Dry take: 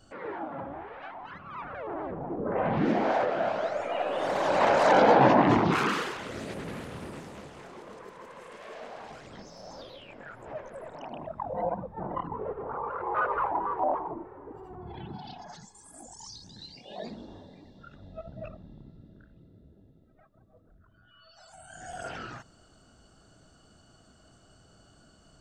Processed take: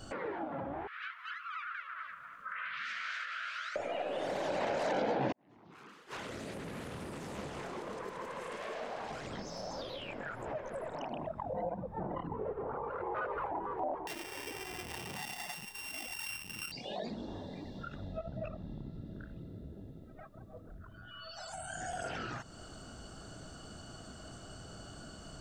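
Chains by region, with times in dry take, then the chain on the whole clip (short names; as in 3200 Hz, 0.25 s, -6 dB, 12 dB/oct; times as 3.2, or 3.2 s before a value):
0.87–3.76 elliptic high-pass 1300 Hz + doubler 16 ms -11 dB
5.32–7.39 flipped gate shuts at -23 dBFS, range -37 dB + high shelf 5200 Hz +3 dB + compressor, threshold -45 dBFS
14.07–16.72 sample sorter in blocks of 16 samples + tilt shelf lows -5 dB, about 690 Hz + core saturation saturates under 3300 Hz
whole clip: dynamic EQ 1100 Hz, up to -8 dB, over -43 dBFS, Q 1.5; compressor 2.5:1, threshold -51 dBFS; gain +9.5 dB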